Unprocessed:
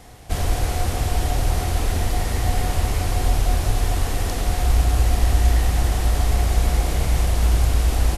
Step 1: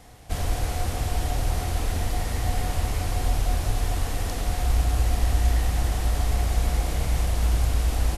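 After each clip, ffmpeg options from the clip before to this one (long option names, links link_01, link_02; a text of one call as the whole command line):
ffmpeg -i in.wav -af "bandreject=frequency=380:width=12,volume=-4.5dB" out.wav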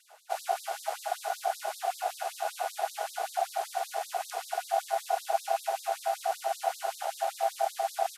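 ffmpeg -i in.wav -af "aeval=exprs='val(0)*sin(2*PI*730*n/s)':channel_layout=same,lowshelf=frequency=140:gain=-5,afftfilt=real='re*gte(b*sr/1024,350*pow(3700/350,0.5+0.5*sin(2*PI*5.2*pts/sr)))':imag='im*gte(b*sr/1024,350*pow(3700/350,0.5+0.5*sin(2*PI*5.2*pts/sr)))':win_size=1024:overlap=0.75,volume=-2.5dB" out.wav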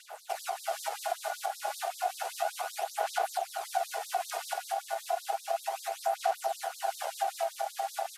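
ffmpeg -i in.wav -af "acompressor=threshold=-40dB:ratio=3,aphaser=in_gain=1:out_gain=1:delay=3.6:decay=0.43:speed=0.32:type=sinusoidal,volume=7dB" out.wav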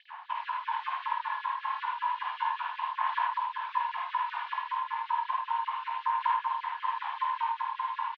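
ffmpeg -i in.wav -filter_complex "[0:a]asplit=2[link_01][link_02];[link_02]aecho=0:1:21|53|80:0.237|0.668|0.531[link_03];[link_01][link_03]amix=inputs=2:normalize=0,highpass=frequency=440:width_type=q:width=0.5412,highpass=frequency=440:width_type=q:width=1.307,lowpass=frequency=3000:width_type=q:width=0.5176,lowpass=frequency=3000:width_type=q:width=0.7071,lowpass=frequency=3000:width_type=q:width=1.932,afreqshift=250" out.wav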